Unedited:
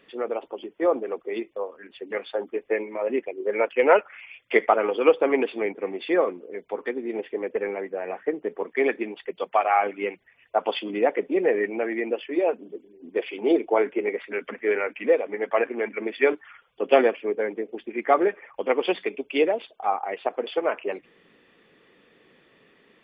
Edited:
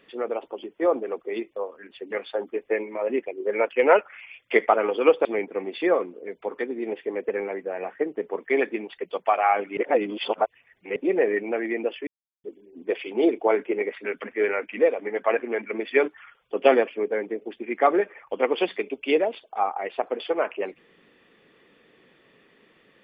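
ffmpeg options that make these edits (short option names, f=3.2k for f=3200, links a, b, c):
-filter_complex "[0:a]asplit=6[a][b][c][d][e][f];[a]atrim=end=5.252[g];[b]atrim=start=5.518:end=10.042[h];[c]atrim=start=10.038:end=11.232,asetpts=PTS-STARTPTS,areverse[i];[d]atrim=start=11.228:end=12.34,asetpts=PTS-STARTPTS,afade=t=out:st=1.108:d=0.004:c=hsin[j];[e]atrim=start=12.34:end=12.71,asetpts=PTS-STARTPTS,volume=0[k];[f]atrim=start=12.71,asetpts=PTS-STARTPTS,afade=t=in:d=0.004:c=hsin[l];[g][h]acrossfade=d=0.004:c1=hsin:c2=hsin[m];[m][i]acrossfade=d=0.004:c1=hsin:c2=hsin[n];[j][k][l]concat=n=3:v=0:a=1[o];[n][o]acrossfade=d=0.004:c1=hsin:c2=hsin"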